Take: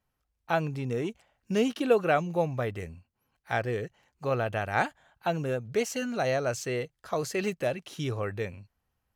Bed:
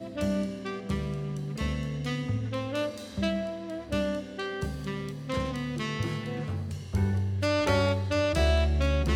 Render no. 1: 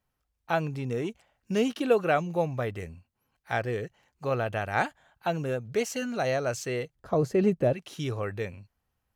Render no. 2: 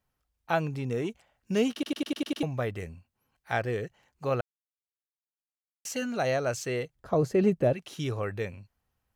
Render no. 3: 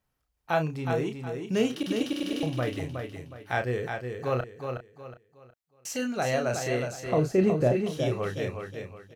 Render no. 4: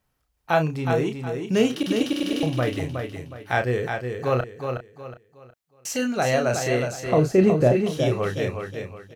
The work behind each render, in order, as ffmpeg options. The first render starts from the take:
-filter_complex "[0:a]asettb=1/sr,asplit=3[a][b][c];[a]atrim=end=6.954[d];[b]atrim=start=6.95:end=7.73,asetpts=PTS-STARTPTS,afade=t=in:d=0.004:c=qsin,afade=t=out:st=0.776:d=0.004:c=qsin,tiltshelf=f=920:g=10[e];[c]atrim=start=7.726[f];[d][e]acrossfade=d=0.004:c1=hsin:c2=qsin[g];[g][f]acrossfade=d=0.004:c1=qsin:c2=hsin"
-filter_complex "[0:a]asplit=10[a][b][c][d][e][f][g][h][i][j];[a]atrim=end=1.832[k];[b]atrim=start=1.728:end=1.832[l];[c]atrim=start=1.728:end=1.832[m];[d]atrim=start=1.728:end=1.832[n];[e]atrim=start=1.728:end=1.832[o];[f]atrim=start=1.728:end=1.832[p];[g]atrim=start=1.728:end=1.832[q];[h]atrim=start=2.428:end=4.41,asetpts=PTS-STARTPTS,afade=t=out:st=1.978:d=0.004:c=hsin[r];[i]atrim=start=4.41:end=5.85,asetpts=PTS-STARTPTS,volume=0[s];[j]atrim=start=5.85,asetpts=PTS-STARTPTS,afade=t=in:d=0.004:c=hsin[t];[k][l]acrossfade=d=0.004:c1=hsin:c2=hsin[u];[u][m]acrossfade=d=0.004:c1=hsin:c2=hsin[v];[v][n]acrossfade=d=0.004:c1=hsin:c2=hsin[w];[w][o]acrossfade=d=0.004:c1=hsin:c2=hsin[x];[x][p]acrossfade=d=0.004:c1=hsin:c2=hsin[y];[y][q]acrossfade=d=0.004:c1=hsin:c2=hsin[z];[r][s][t]concat=n=3:v=0:a=1[aa];[z][aa]acrossfade=d=0.004:c1=hsin:c2=hsin"
-filter_complex "[0:a]asplit=2[a][b];[b]adelay=32,volume=-7dB[c];[a][c]amix=inputs=2:normalize=0,asplit=2[d][e];[e]aecho=0:1:366|732|1098|1464:0.501|0.16|0.0513|0.0164[f];[d][f]amix=inputs=2:normalize=0"
-af "volume=5.5dB"

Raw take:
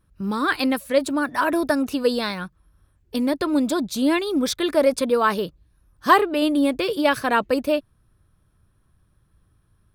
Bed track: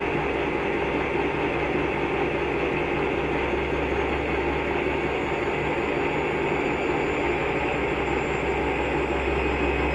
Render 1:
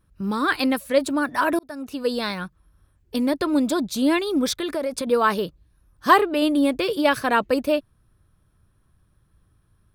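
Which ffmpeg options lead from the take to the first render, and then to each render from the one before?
-filter_complex "[0:a]asettb=1/sr,asplit=3[a][b][c];[a]atrim=end=4.534[d];[b]atrim=start=4.53:end=5.07,asetpts=PTS-STARTPTS,afade=t=in:d=0.004:c=qsin,afade=t=out:st=0.536:d=0.004:c=qsin,acompressor=threshold=-23dB:ratio=4:attack=3.2:release=140:knee=1:detection=peak[e];[c]atrim=start=5.066[f];[d][e]acrossfade=d=0.004:c1=hsin:c2=qsin[g];[g][f]acrossfade=d=0.004:c1=qsin:c2=hsin,asplit=2[h][i];[h]atrim=end=1.59,asetpts=PTS-STARTPTS,afade=t=out:st=1.586:d=0.004:c=hsin[j];[i]atrim=start=1.59,asetpts=PTS-STARTPTS,afade=t=in:d=0.73[k];[j][k]concat=n=2:v=0:a=1"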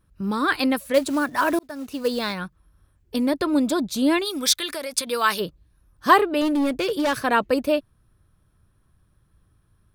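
-filter_complex "[0:a]asettb=1/sr,asplit=3[a][b][c];[a]atrim=end=0.944[d];[b]atrim=start=0.94:end=2.33,asetpts=PTS-STARTPTS,afade=t=in:d=0.004:c=qsin,afade=t=out:st=1.386:d=0.004:c=qsin,acrusher=bits=5:mode=log:mix=0:aa=0.000001[e];[c]atrim=start=2.326[f];[d][e]acrossfade=d=0.004:c1=hsin:c2=qsin[g];[g][f]acrossfade=d=0.004:c1=qsin:c2=hsin,asplit=3[h][i][j];[h]afade=t=out:st=4.24:d=0.02[k];[i]tiltshelf=f=1.3k:g=-9.5,afade=t=in:st=4.24:d=0.02,afade=t=out:st=5.39:d=0.02[l];[j]afade=t=in:st=5.39:d=0.02[m];[k][l][m]amix=inputs=3:normalize=0,asettb=1/sr,asplit=3[n][o][p];[n]atrim=end=6.414[q];[o]atrim=start=6.41:end=7.24,asetpts=PTS-STARTPTS,afade=t=in:d=0.004:c=qsin,afade=t=out:st=0.826:d=0.004:c=qsin,asoftclip=type=hard:threshold=-18.5dB[r];[p]atrim=start=7.236[s];[q][r]acrossfade=d=0.004:c1=hsin:c2=qsin[t];[t][s]acrossfade=d=0.004:c1=qsin:c2=hsin"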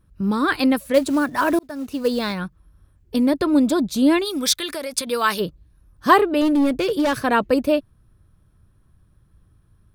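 -af "lowshelf=f=430:g=6"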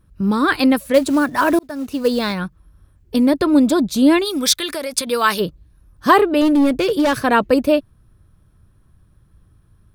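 -af "volume=3.5dB,alimiter=limit=-1dB:level=0:latency=1"

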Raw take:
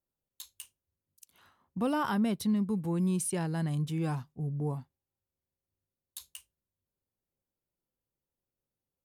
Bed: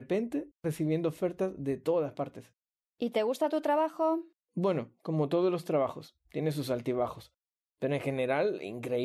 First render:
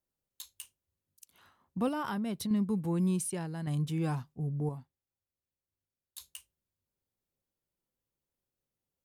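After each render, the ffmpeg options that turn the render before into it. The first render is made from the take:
-filter_complex "[0:a]asettb=1/sr,asplit=3[a][b][c];[a]atrim=end=1.884[d];[b]atrim=start=1.88:end=2.51,asetpts=PTS-STARTPTS,afade=t=in:d=0.004:c=qsin,afade=t=out:st=0.626:d=0.004:c=qsin,acompressor=threshold=-31dB:ratio=6:attack=3.2:release=140:knee=1:detection=peak[e];[c]atrim=start=2.506[f];[d][e]acrossfade=d=0.004:c1=hsin:c2=qsin[g];[g][f]acrossfade=d=0.004:c1=qsin:c2=hsin,asplit=4[h][i][j][k];[h]atrim=end=3.67,asetpts=PTS-STARTPTS,afade=t=out:st=3.11:d=0.56:c=qua:silence=0.473151[l];[i]atrim=start=3.67:end=4.692,asetpts=PTS-STARTPTS,afade=t=in:d=0.004:c=hsin:silence=0.473151[m];[j]atrim=start=4.688:end=6.182,asetpts=PTS-STARTPTS,volume=-5.5dB[n];[k]atrim=start=6.178[o];[l][m]concat=n=2:v=0:a=1[p];[p][n]acrossfade=d=0.004:c1=hsin:c2=hsin[q];[q][o]acrossfade=d=0.004:c1=hsin:c2=hsin"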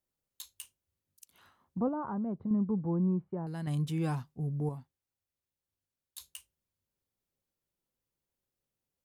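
-filter_complex "[0:a]asettb=1/sr,asplit=3[a][b][c];[a]atrim=end=1.804[d];[b]atrim=start=1.8:end=3.47,asetpts=PTS-STARTPTS,afade=t=in:d=0.004:c=qsin,afade=t=out:st=1.666:d=0.004:c=qsin,lowpass=f=1.1k:w=0.5412,lowpass=f=1.1k:w=1.3066[e];[c]atrim=start=3.466[f];[d][e]acrossfade=d=0.004:c1=hsin:c2=qsin[g];[g][f]acrossfade=d=0.004:c1=qsin:c2=hsin"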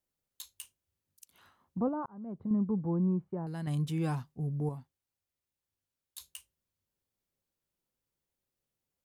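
-filter_complex "[0:a]asplit=2[a][b];[a]atrim=end=2.06,asetpts=PTS-STARTPTS,afade=t=out:st=2.056:d=0.004:c=hsin[c];[b]atrim=start=2.06,asetpts=PTS-STARTPTS,afade=t=in:d=0.45[d];[c][d]concat=n=2:v=0:a=1"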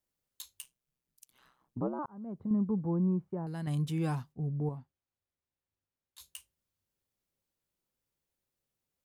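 -filter_complex "[0:a]asettb=1/sr,asplit=3[a][b][c];[a]atrim=end=0.614[d];[b]atrim=start=0.61:end=1.99,asetpts=PTS-STARTPTS,afade=t=in:d=0.004:c=qsin,afade=t=out:st=1.376:d=0.004:c=qsin,aeval=exprs='val(0)*sin(2*PI*64*n/s)':c=same[e];[c]atrim=start=1.986[f];[d][e]acrossfade=d=0.004:c1=hsin:c2=qsin[g];[g][f]acrossfade=d=0.004:c1=qsin:c2=hsin,asplit=3[h][i][j];[h]afade=t=out:st=4.32:d=0.02[k];[i]lowpass=f=1.9k:p=1,afade=t=in:st=4.32:d=0.02,afade=t=out:st=6.18:d=0.02[l];[j]afade=t=in:st=6.18:d=0.02[m];[k][l][m]amix=inputs=3:normalize=0"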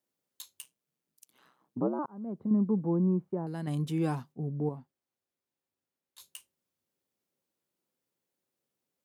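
-af "highpass=250,lowshelf=f=490:g=9.5"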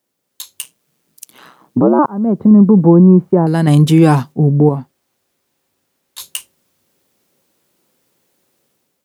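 -af "dynaudnorm=f=230:g=5:m=10dB,alimiter=level_in=13dB:limit=-1dB:release=50:level=0:latency=1"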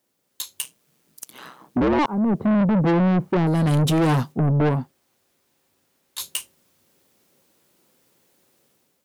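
-af "asoftclip=type=tanh:threshold=-16.5dB"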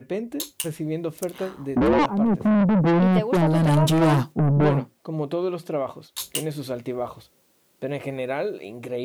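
-filter_complex "[1:a]volume=2dB[a];[0:a][a]amix=inputs=2:normalize=0"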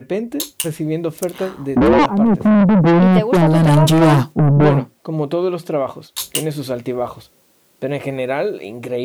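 -af "volume=7dB"

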